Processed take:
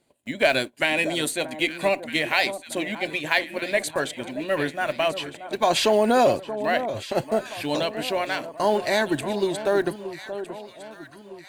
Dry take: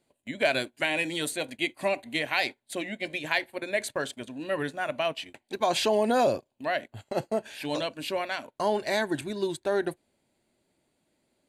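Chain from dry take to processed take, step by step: block-companded coder 7-bit; Chebyshev shaper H 6 -37 dB, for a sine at -10 dBFS; echo whose repeats swap between lows and highs 629 ms, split 1.2 kHz, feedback 65%, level -10.5 dB; trim +5 dB

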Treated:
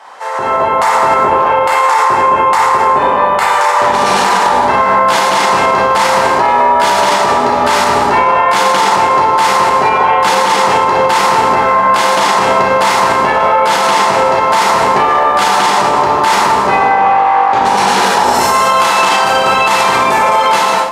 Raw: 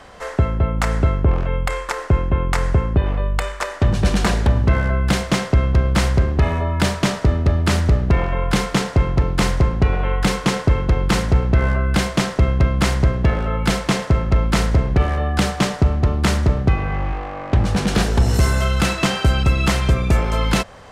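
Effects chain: high-pass 530 Hz 12 dB/octave; peaking EQ 900 Hz +14.5 dB 0.39 oct; plate-style reverb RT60 1.6 s, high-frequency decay 0.65×, DRR -6.5 dB; peak limiter -11 dBFS, peak gain reduction 11 dB; level rider gain up to 12.5 dB

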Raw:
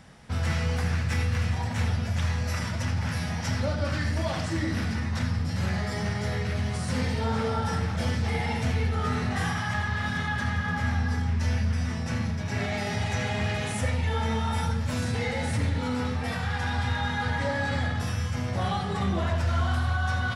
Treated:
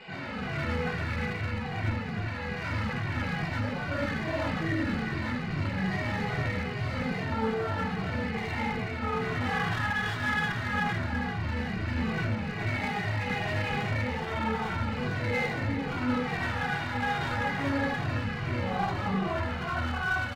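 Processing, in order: one-bit delta coder 64 kbps, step -31.5 dBFS; distance through air 200 m; band-stop 3.3 kHz, Q 7.4; flutter echo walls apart 8.1 m, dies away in 0.24 s; peak limiter -23.5 dBFS, peak gain reduction 8 dB; reverberation RT60 0.85 s, pre-delay 76 ms, DRR -6.5 dB; level rider; peaking EQ 72 Hz -10.5 dB 1.5 oct; one-sided clip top -19.5 dBFS; endless flanger 2 ms -2.4 Hz; trim -9 dB

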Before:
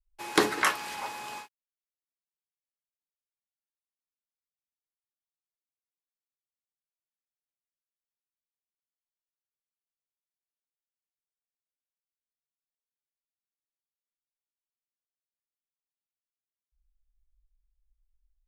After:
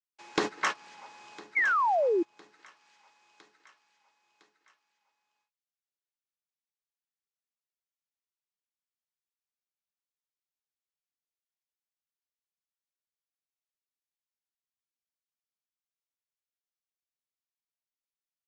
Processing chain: elliptic band-pass 140–6700 Hz; on a send: feedback delay 1008 ms, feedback 42%, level -12.5 dB; on the sum: painted sound fall, 1.55–2.23 s, 320–2300 Hz -23 dBFS; gate -25 dBFS, range -18 dB; in parallel at -1.5 dB: peak limiter -22 dBFS, peak gain reduction 11 dB; on the sum: compression 2.5:1, threshold -27 dBFS, peak gain reduction 7.5 dB; tape noise reduction on one side only encoder only

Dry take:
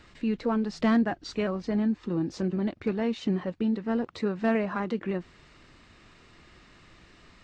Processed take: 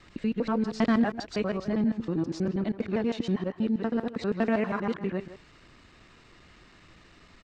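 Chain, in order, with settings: time reversed locally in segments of 80 ms; speakerphone echo 160 ms, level -12 dB

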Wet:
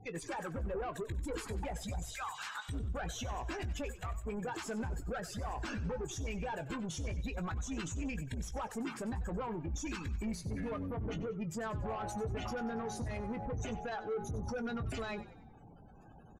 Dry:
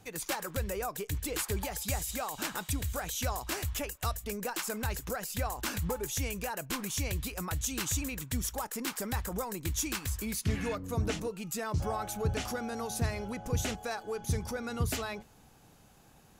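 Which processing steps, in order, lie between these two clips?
2.10–2.67 s: high-pass 950 Hz 24 dB/octave; spectral gate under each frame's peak -15 dB strong; peak limiter -31.5 dBFS, peak gain reduction 11 dB; saturation -38 dBFS, distortion -13 dB; distance through air 71 m; doubling 18 ms -10.5 dB; frequency-shifting echo 94 ms, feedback 49%, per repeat -50 Hz, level -15 dB; trim +4 dB

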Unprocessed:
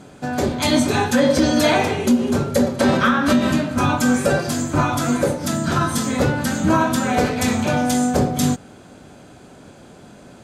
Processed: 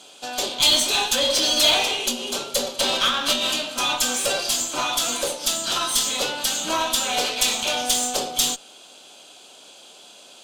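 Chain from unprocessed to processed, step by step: high-pass 620 Hz 12 dB/octave; resonant high shelf 2.4 kHz +8 dB, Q 3; in parallel at -5.5 dB: overload inside the chain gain 19.5 dB; on the sum: Chebyshev shaper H 6 -22 dB, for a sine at 0.5 dBFS; trim -5.5 dB

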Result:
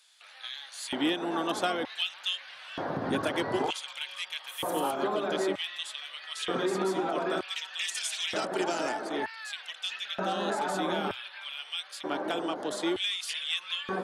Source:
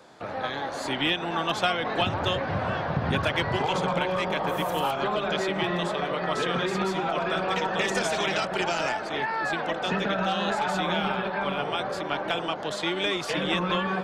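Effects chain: LFO high-pass square 0.54 Hz 290–2800 Hz; fifteen-band graphic EQ 100 Hz +10 dB, 2.5 kHz -5 dB, 10 kHz +12 dB; trim -5 dB

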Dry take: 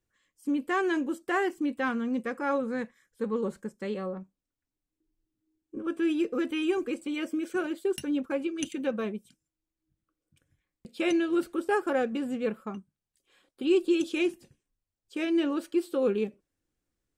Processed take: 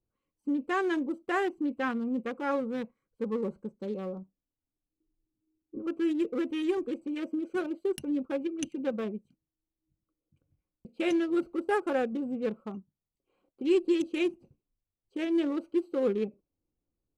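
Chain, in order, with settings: local Wiener filter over 25 samples; trim -1 dB

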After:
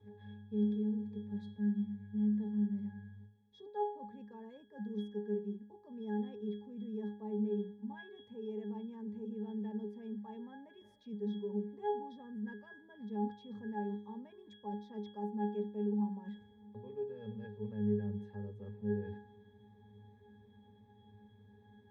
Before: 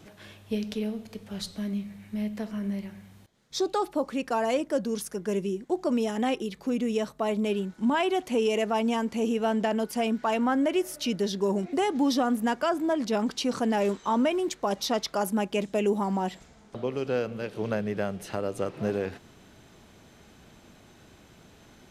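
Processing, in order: reverse; compression, threshold -32 dBFS, peak gain reduction 11 dB; reverse; pitch-class resonator G#, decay 0.43 s; trim +7.5 dB

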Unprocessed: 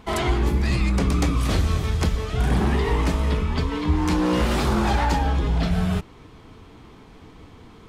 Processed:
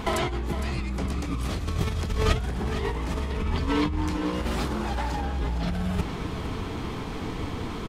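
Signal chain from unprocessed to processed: compressor with a negative ratio -31 dBFS, ratio -1; on a send: feedback delay 459 ms, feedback 47%, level -10.5 dB; on the sum: trim +3.5 dB

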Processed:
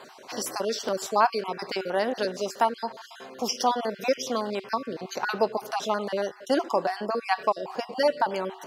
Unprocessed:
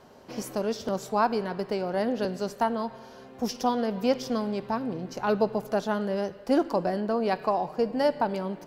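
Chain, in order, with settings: random holes in the spectrogram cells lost 31%; frequency weighting A; reverse; upward compressor, threshold -50 dBFS; reverse; feedback comb 380 Hz, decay 0.33 s, harmonics odd, mix 50%; in parallel at -1 dB: compression, threshold -45 dBFS, peak gain reduction 19 dB; on the sum: treble shelf 4.9 kHz +4.5 dB; trim +8.5 dB

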